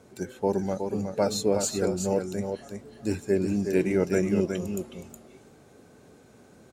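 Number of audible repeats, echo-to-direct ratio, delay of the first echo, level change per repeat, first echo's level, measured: 1, -6.5 dB, 0.367 s, no steady repeat, -6.5 dB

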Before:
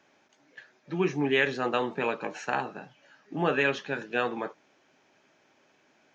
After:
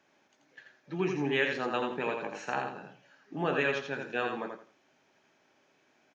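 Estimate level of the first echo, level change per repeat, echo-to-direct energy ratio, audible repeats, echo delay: -5.0 dB, -12.5 dB, -4.5 dB, 3, 84 ms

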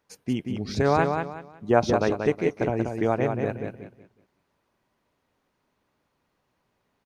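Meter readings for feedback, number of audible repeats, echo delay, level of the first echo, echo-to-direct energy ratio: 28%, 3, 0.184 s, -5.5 dB, -5.0 dB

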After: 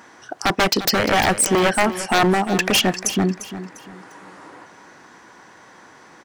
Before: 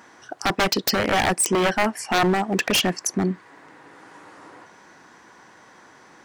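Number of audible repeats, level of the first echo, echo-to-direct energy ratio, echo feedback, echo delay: 3, -13.0 dB, -12.5 dB, 32%, 0.349 s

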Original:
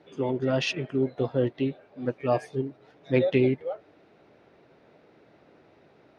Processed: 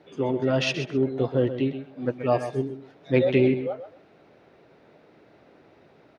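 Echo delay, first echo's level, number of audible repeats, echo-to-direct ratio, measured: 0.129 s, -10.5 dB, 2, -10.5 dB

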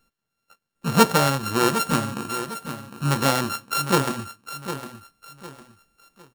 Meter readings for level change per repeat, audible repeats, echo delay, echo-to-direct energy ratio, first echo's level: -10.0 dB, 3, 0.756 s, -10.5 dB, -11.0 dB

